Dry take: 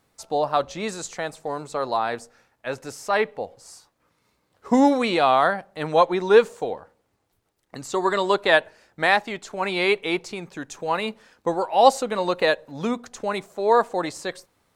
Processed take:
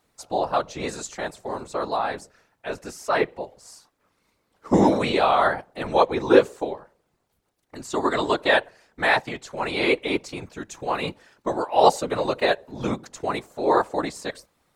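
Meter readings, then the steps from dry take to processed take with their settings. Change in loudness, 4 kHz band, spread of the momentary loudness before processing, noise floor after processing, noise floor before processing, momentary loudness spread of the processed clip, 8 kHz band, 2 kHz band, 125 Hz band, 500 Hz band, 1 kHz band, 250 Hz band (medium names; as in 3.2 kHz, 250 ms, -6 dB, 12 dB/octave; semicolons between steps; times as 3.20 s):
-1.0 dB, -1.0 dB, 15 LU, -72 dBFS, -71 dBFS, 16 LU, -1.0 dB, -1.0 dB, +3.5 dB, -1.0 dB, -1.5 dB, 0.0 dB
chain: whisper effect; trim -1 dB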